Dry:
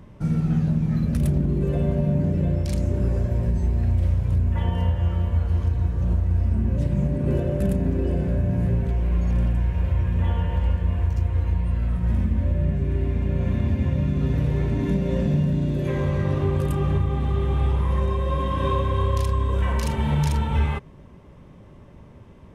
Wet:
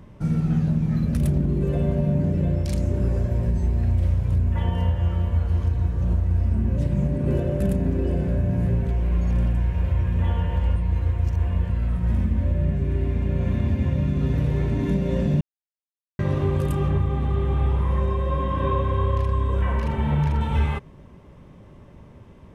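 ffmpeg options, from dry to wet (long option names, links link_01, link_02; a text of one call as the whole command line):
ffmpeg -i in.wav -filter_complex "[0:a]asettb=1/sr,asplit=3[link_01][link_02][link_03];[link_01]atrim=end=16.884[link_04];[link_02]atrim=start=16.88:end=20.41,asetpts=PTS-STARTPTS,afade=type=in:duration=0.004:curve=qsin,afade=type=out:start_time=3.526:duration=0.004:curve=qsin,acrossover=split=2700[link_05][link_06];[link_06]acompressor=threshold=-55dB:ratio=4:attack=1:release=60[link_07];[link_05][link_07]amix=inputs=2:normalize=0[link_08];[link_03]atrim=start=20.406[link_09];[link_04][link_08]acrossfade=duration=0.004:curve1=hsin:curve2=qsin[link_10];[link_10][link_09]acrossfade=duration=0.004:curve1=qsin:curve2=hsin,asplit=5[link_11][link_12][link_13][link_14][link_15];[link_11]atrim=end=10.762[link_16];[link_12]atrim=start=10.758:end=11.702,asetpts=PTS-STARTPTS,areverse[link_17];[link_13]atrim=start=11.698:end=15.41,asetpts=PTS-STARTPTS,afade=type=out:start_time=3.708:duration=0.004:curve=hsin[link_18];[link_14]atrim=start=15.41:end=16.19,asetpts=PTS-STARTPTS,volume=0[link_19];[link_15]atrim=start=16.19,asetpts=PTS-STARTPTS,afade=type=in:duration=0.004:curve=hsin[link_20];[link_16][link_17]acrossfade=duration=0.004:curve1=hsin:curve2=hsin[link_21];[link_18][link_19][link_20]concat=n=3:v=0:a=1[link_22];[link_21][link_22]acrossfade=duration=0.004:curve1=hsin:curve2=hsin" out.wav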